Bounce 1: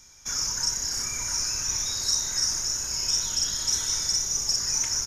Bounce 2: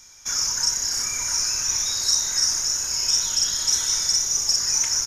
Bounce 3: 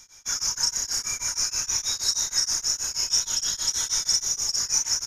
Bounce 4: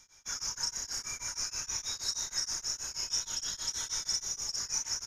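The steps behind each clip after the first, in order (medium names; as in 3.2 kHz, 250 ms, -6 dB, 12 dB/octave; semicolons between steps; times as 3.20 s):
bass shelf 430 Hz -7.5 dB; trim +4.5 dB
tremolo of two beating tones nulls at 6.3 Hz
treble shelf 6 kHz -7 dB; trim -6.5 dB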